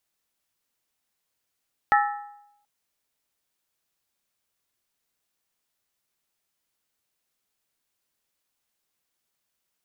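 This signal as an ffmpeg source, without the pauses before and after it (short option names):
-f lavfi -i "aevalsrc='0.168*pow(10,-3*t/0.82)*sin(2*PI*823*t)+0.119*pow(10,-3*t/0.649)*sin(2*PI*1311.9*t)+0.0841*pow(10,-3*t/0.561)*sin(2*PI*1757.9*t)+0.0596*pow(10,-3*t/0.541)*sin(2*PI*1889.6*t)':d=0.73:s=44100"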